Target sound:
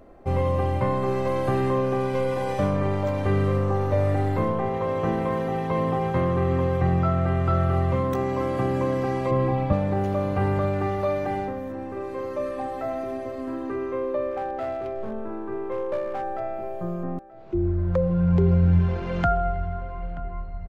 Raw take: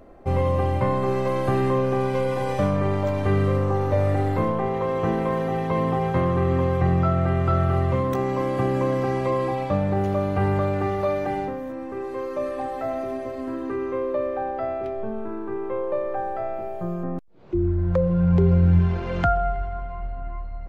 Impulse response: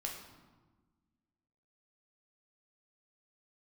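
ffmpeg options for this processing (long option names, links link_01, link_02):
-filter_complex "[0:a]asettb=1/sr,asplit=3[link_01][link_02][link_03];[link_01]atrim=end=9.314[link_04];[link_02]atrim=start=9.31:end=9.73,asetpts=PTS-STARTPTS,afade=type=in:duration=0.004:curve=qsin,afade=type=out:start_time=0.416:duration=0.004:curve=qsin,bass=frequency=250:gain=10,treble=frequency=4000:gain=-10[link_05];[link_03]atrim=start=9.726[link_06];[link_04][link_05]acrossfade=duration=0.004:curve1=hsin:curve2=qsin[link_07];[link_07][link_06]acrossfade=duration=0.004:curve1=qsin:curve2=hsin,asettb=1/sr,asplit=3[link_08][link_09][link_10];[link_08]atrim=end=14.314[link_11];[link_09]atrim=start=14.31:end=16.4,asetpts=PTS-STARTPTS,afade=type=in:duration=0.004:curve=qsin,afade=type=out:start_time=2.086:duration=0.004:curve=qsin,aeval=exprs='clip(val(0),-1,0.0668)':channel_layout=same[link_12];[link_10]atrim=start=16.396[link_13];[link_11][link_12]acrossfade=duration=0.004:curve1=hsin:curve2=qsin[link_14];[link_14][link_13]acrossfade=duration=0.004:curve1=qsin:curve2=hsin,asplit=2[link_15][link_16];[link_16]adelay=931,lowpass=frequency=2200:poles=1,volume=-17dB,asplit=2[link_17][link_18];[link_18]adelay=931,lowpass=frequency=2200:poles=1,volume=0.35,asplit=2[link_19][link_20];[link_20]adelay=931,lowpass=frequency=2200:poles=1,volume=0.35[link_21];[link_17][link_19][link_21]amix=inputs=3:normalize=0[link_22];[link_15][link_22]amix=inputs=2:normalize=0,volume=-1.5dB"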